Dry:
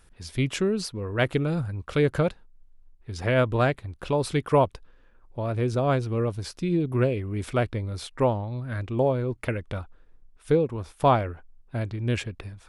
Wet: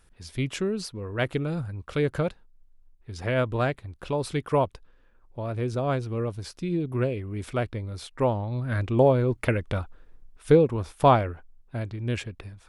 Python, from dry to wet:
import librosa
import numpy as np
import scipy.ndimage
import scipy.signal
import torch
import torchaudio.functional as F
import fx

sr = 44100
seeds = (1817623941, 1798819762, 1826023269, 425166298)

y = fx.gain(x, sr, db=fx.line((8.12, -3.0), (8.67, 4.0), (10.72, 4.0), (11.83, -2.5)))